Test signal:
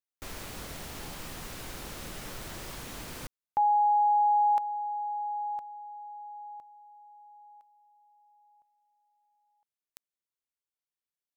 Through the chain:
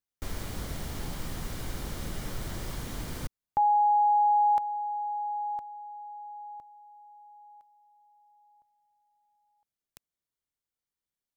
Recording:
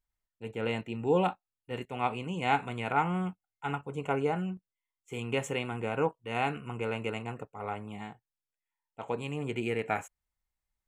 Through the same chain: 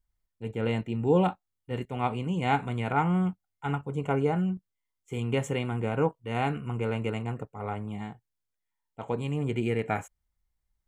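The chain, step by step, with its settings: bass shelf 260 Hz +10 dB; band-stop 2.6 kHz, Q 13

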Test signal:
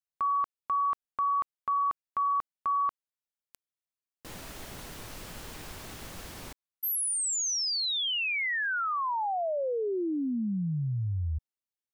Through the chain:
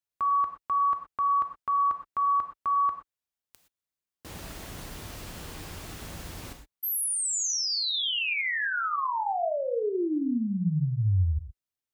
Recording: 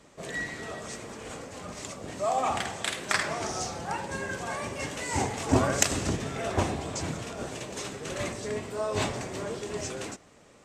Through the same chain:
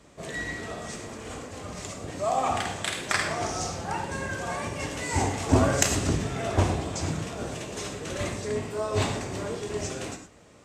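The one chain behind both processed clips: high-pass 41 Hz; bass shelf 130 Hz +7.5 dB; gated-style reverb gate 140 ms flat, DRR 5 dB

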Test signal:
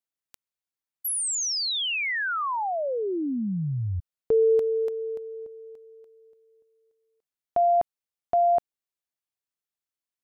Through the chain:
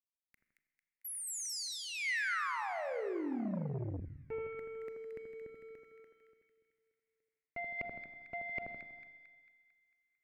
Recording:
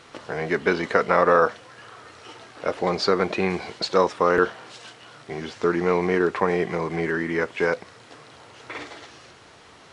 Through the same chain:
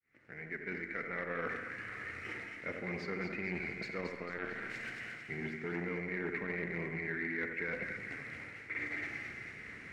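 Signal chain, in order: fade-in on the opening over 2.08 s; treble shelf 6.3 kHz +4.5 dB; waveshaping leveller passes 1; FFT filter 220 Hz 0 dB, 1 kHz -17 dB, 2.1 kHz +9 dB, 3.2 kHz -17 dB; reverse; compression 4:1, threshold -40 dBFS; reverse; two-band feedback delay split 1.5 kHz, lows 81 ms, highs 224 ms, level -5 dB; Schroeder reverb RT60 1.5 s, combs from 30 ms, DRR 10.5 dB; transformer saturation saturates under 540 Hz; trim +1 dB

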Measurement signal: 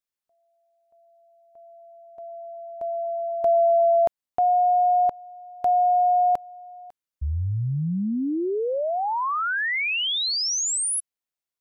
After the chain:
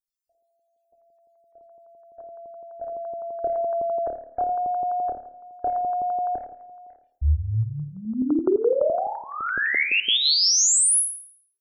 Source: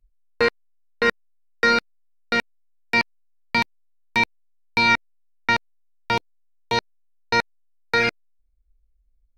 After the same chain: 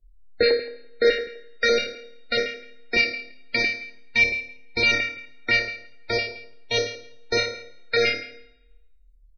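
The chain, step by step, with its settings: in parallel at -1 dB: compression, threshold -28 dBFS; on the sum: static phaser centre 420 Hz, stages 4; on a send: flutter echo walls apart 4.7 m, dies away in 0.58 s; on the sum: LFO notch square 5.9 Hz 380–2800 Hz; loudest bins only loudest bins 64; spring tank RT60 1 s, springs 47/51 ms, chirp 75 ms, DRR 17 dB

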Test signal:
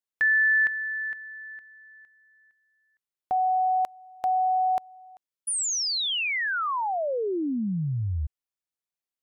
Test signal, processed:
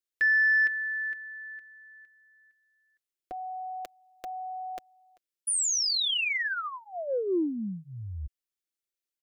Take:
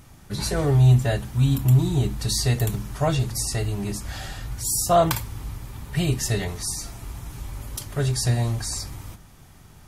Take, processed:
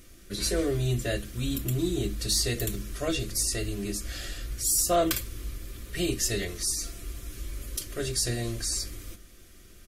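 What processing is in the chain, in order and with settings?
static phaser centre 360 Hz, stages 4; comb 5.8 ms, depth 39%; saturation -13.5 dBFS

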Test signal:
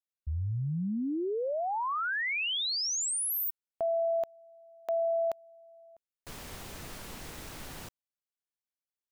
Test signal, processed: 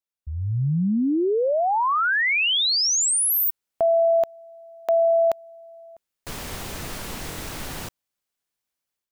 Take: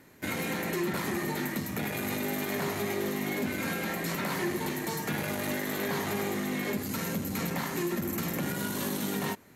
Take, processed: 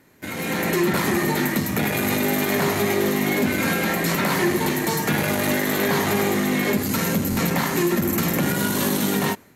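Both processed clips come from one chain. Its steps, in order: level rider gain up to 10.5 dB; buffer glitch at 7.30 s, samples 1024, times 2

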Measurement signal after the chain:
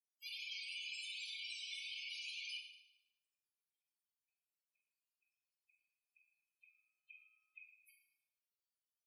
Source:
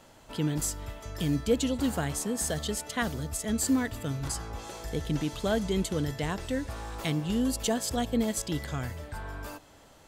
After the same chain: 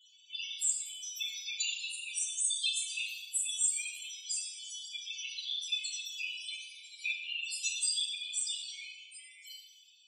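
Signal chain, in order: every band turned upside down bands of 500 Hz; Chebyshev high-pass 2.2 kHz, order 10; loudest bins only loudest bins 8; FDN reverb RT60 0.87 s, high-frequency decay 0.95×, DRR -2.5 dB; trim +7.5 dB

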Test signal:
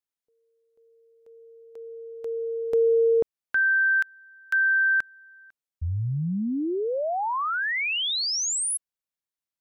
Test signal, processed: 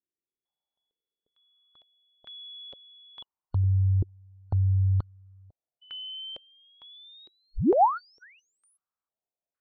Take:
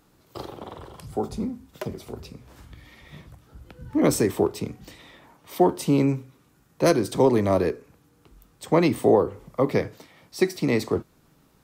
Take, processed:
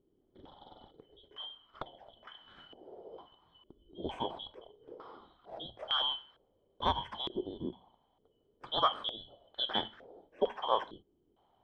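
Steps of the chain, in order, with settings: four frequency bands reordered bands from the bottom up 2413; step-sequenced low-pass 2.2 Hz 360–1500 Hz; trim -1.5 dB

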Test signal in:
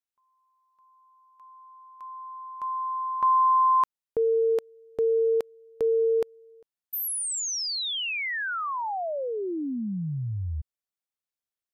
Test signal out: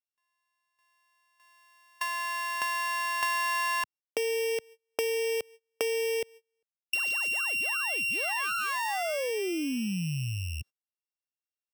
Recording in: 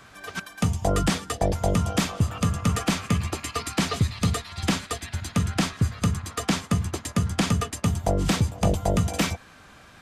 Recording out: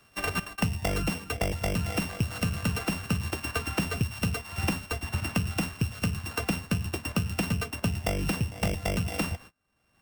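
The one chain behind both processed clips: sorted samples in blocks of 16 samples; gate -42 dBFS, range -35 dB; three bands compressed up and down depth 100%; trim -6 dB

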